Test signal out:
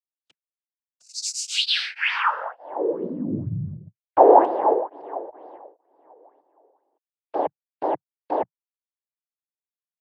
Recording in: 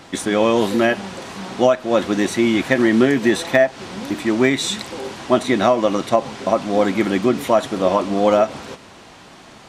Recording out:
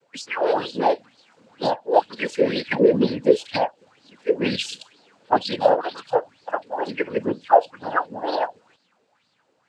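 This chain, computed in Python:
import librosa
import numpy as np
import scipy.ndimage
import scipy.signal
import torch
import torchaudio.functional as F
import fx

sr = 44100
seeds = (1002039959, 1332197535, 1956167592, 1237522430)

y = fx.noise_reduce_blind(x, sr, reduce_db=19)
y = fx.env_flanger(y, sr, rest_ms=5.8, full_db=-16.5)
y = fx.noise_vocoder(y, sr, seeds[0], bands=8)
y = fx.bell_lfo(y, sr, hz=2.1, low_hz=430.0, high_hz=4600.0, db=15)
y = y * 10.0 ** (-6.0 / 20.0)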